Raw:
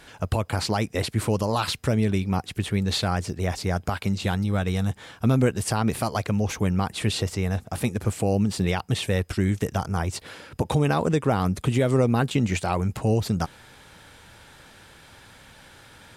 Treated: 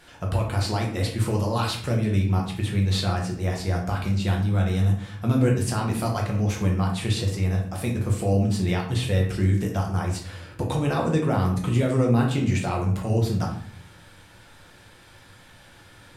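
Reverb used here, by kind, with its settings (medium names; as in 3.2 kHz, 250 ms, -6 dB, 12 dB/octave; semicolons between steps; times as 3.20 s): simulated room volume 87 m³, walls mixed, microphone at 0.89 m; trim -5 dB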